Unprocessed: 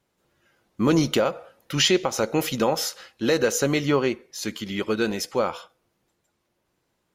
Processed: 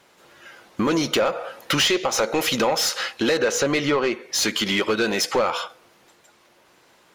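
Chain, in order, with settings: 3.37–4.13 high shelf 6700 Hz -11.5 dB; compressor 4:1, threshold -33 dBFS, peak gain reduction 15 dB; overdrive pedal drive 19 dB, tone 5100 Hz, clips at -18 dBFS; gain +8 dB

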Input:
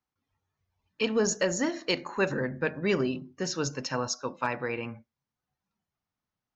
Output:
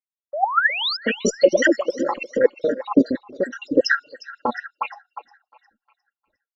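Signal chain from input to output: random spectral dropouts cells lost 84%; low-pass opened by the level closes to 570 Hz, open at -27.5 dBFS; resonant low shelf 310 Hz -8 dB, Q 1.5; comb 3.7 ms, depth 66%; compressor 6:1, threshold -31 dBFS, peak gain reduction 11 dB; resonator 720 Hz, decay 0.19 s, harmonics all, mix 60%; painted sound rise, 0.33–0.97, 550–5300 Hz -50 dBFS; on a send: thinning echo 0.356 s, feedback 42%, high-pass 840 Hz, level -15 dB; on the sum: maximiser +35.5 dB; LFO bell 4 Hz 220–2600 Hz +16 dB; gain -11.5 dB

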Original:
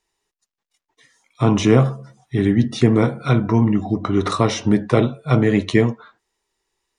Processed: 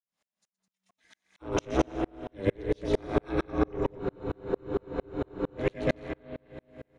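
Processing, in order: in parallel at -5 dB: overloaded stage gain 16.5 dB; on the sum: high shelf 6600 Hz -6.5 dB; on a send: bouncing-ball echo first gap 0.12 s, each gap 0.75×, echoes 5; on the sum: AGC gain up to 5.5 dB; spring tank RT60 4 s, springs 43/54 ms, chirp 75 ms, DRR 11 dB; ring modulator 190 Hz; low shelf 85 Hz -11 dB; spectral freeze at 4.01, 1.57 s; dB-ramp tremolo swelling 4.4 Hz, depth 39 dB; gain -2 dB

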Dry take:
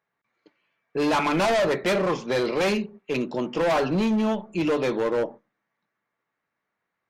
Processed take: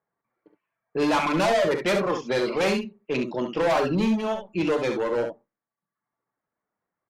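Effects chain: low-pass opened by the level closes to 1200 Hz, open at -19.5 dBFS; reverb removal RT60 0.78 s; early reflections 41 ms -13 dB, 67 ms -7 dB

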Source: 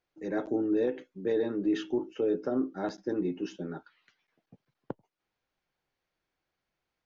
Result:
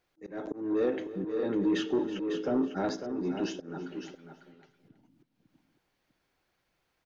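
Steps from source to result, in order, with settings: spectral delete 4.72–4.97, 330–2300 Hz; in parallel at +2 dB: limiter -30.5 dBFS, peak gain reduction 11 dB; on the sum: Schroeder reverb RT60 1.2 s, combs from 33 ms, DRR 17 dB; soft clip -19.5 dBFS, distortion -19 dB; feedback echo 0.325 s, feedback 22%, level -17 dB; auto swell 0.311 s; echo 0.55 s -8.5 dB

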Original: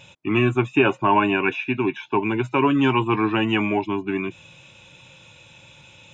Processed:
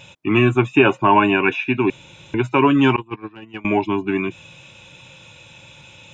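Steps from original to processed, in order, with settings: 1.9–2.34 room tone; 2.96–3.65 gate -16 dBFS, range -27 dB; gain +4 dB

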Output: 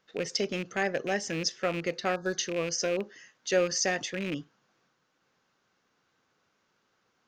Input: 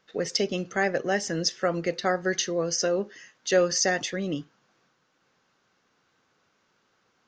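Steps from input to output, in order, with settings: rattling part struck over -32 dBFS, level -23 dBFS; spectral gain 2.15–2.37, 1700–3400 Hz -22 dB; gain -4 dB

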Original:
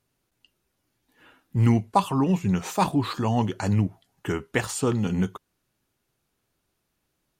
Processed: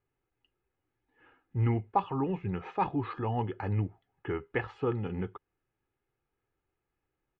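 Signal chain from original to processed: LPF 2500 Hz 24 dB/oct; comb 2.4 ms, depth 50%; gain -7.5 dB

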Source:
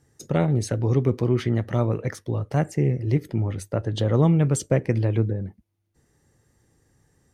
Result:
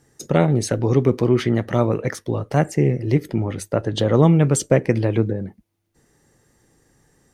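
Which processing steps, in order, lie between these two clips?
bell 83 Hz -9 dB 1.3 oct; gain +6.5 dB

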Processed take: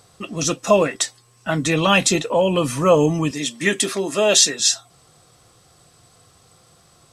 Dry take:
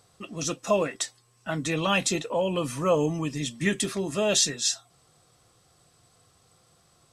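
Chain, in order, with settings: 3.31–4.6 HPF 280 Hz 12 dB/oct; gain +8.5 dB

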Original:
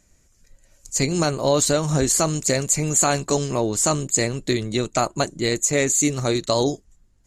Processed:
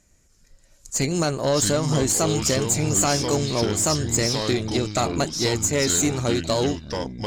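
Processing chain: tube stage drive 13 dB, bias 0.3; echoes that change speed 0.296 s, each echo -5 st, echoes 2, each echo -6 dB

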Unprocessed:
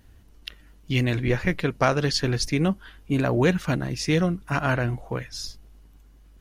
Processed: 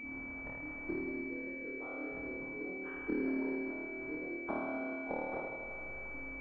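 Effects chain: bin magnitudes rounded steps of 30 dB; compressor 2:1, threshold -39 dBFS, peak gain reduction 12.5 dB; flipped gate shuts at -32 dBFS, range -25 dB; resonant low shelf 200 Hz -13.5 dB, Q 3; on a send: flutter echo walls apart 4.5 m, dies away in 1.5 s; on the sum: spring tank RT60 3.2 s, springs 60 ms, chirp 45 ms, DRR 2 dB; pulse-width modulation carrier 2300 Hz; gain +6 dB

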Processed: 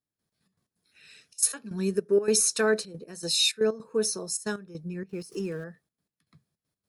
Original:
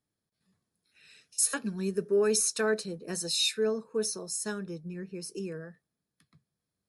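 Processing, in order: 5.09–5.64 zero-crossing step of -54 dBFS; step gate "..xxx.x.xxxxxx.x" 158 bpm -12 dB; gain +4 dB

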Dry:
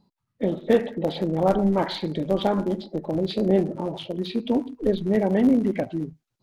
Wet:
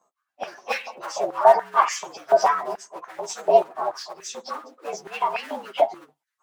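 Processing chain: inharmonic rescaling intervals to 117%; harmonic-percussive split percussive +4 dB; stepped high-pass 6.9 Hz 680–1800 Hz; gain +2.5 dB

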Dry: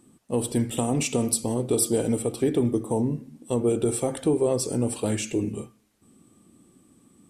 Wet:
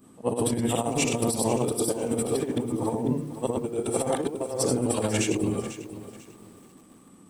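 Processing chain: short-time reversal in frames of 0.205 s; bell 900 Hz +7.5 dB 2 oct; de-hum 73.66 Hz, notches 5; negative-ratio compressor -28 dBFS, ratio -0.5; lo-fi delay 0.495 s, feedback 35%, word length 8-bit, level -13 dB; gain +2.5 dB

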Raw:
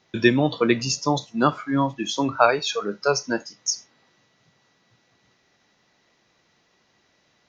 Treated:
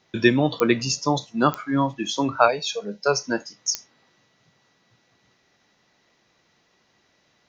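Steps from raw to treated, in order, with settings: 2.48–3.06 fixed phaser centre 340 Hz, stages 6; pops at 0.6/1.54/3.75, -9 dBFS

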